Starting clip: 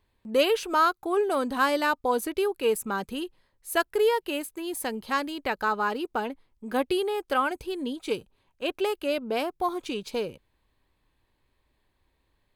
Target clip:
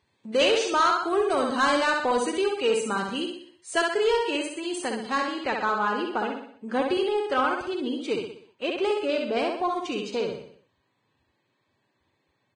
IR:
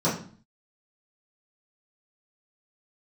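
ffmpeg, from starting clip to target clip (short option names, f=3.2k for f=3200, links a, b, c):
-af "highpass=100,lowpass=7.2k,asetnsamples=n=441:p=0,asendcmd='4.81 highshelf g -2',highshelf=f=3k:g=5,aecho=1:1:62|124|186|248|310|372:0.631|0.309|0.151|0.0742|0.0364|0.0178,asoftclip=type=tanh:threshold=-15.5dB,volume=1dB" -ar 22050 -c:a libvorbis -b:a 16k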